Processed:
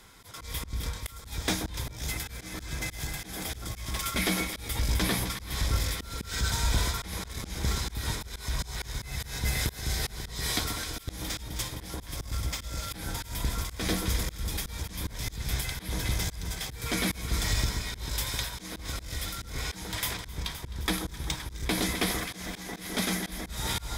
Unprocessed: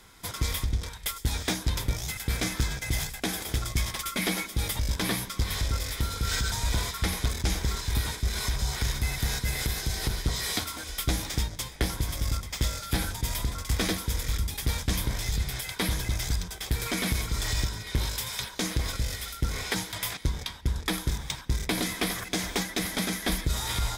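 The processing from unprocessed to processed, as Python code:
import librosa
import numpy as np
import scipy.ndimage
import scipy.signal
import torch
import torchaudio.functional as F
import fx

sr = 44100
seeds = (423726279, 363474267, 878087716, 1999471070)

y = fx.echo_alternate(x, sr, ms=130, hz=1300.0, feedback_pct=79, wet_db=-7.0)
y = fx.auto_swell(y, sr, attack_ms=235.0)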